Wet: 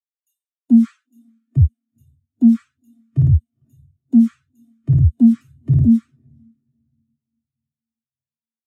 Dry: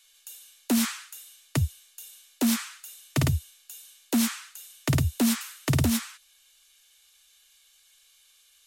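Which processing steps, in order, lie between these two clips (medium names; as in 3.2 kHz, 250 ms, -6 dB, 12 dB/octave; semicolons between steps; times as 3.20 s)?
waveshaping leveller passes 3; on a send: echo that smears into a reverb 470 ms, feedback 54%, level -14 dB; on the sum: spectral contrast expander 2.5:1; trim +8.5 dB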